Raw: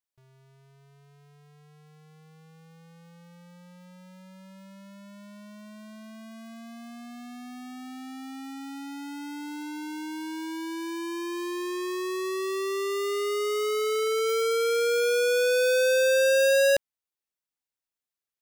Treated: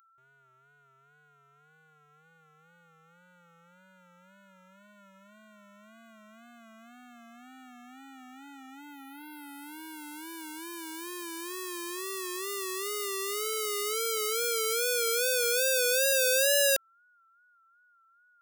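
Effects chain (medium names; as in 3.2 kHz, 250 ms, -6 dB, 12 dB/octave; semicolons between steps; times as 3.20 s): local Wiener filter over 9 samples; whistle 1.4 kHz -58 dBFS; wow and flutter 79 cents; RIAA curve recording; trim -5 dB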